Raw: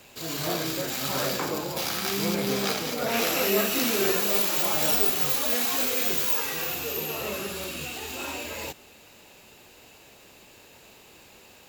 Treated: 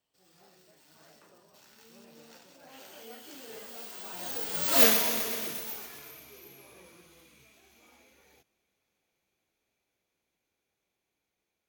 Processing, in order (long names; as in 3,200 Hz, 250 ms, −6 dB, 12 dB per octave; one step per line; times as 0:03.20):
source passing by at 0:04.82, 44 m/s, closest 2.4 metres
feedback echo at a low word length 127 ms, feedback 80%, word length 8 bits, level −11 dB
level +7.5 dB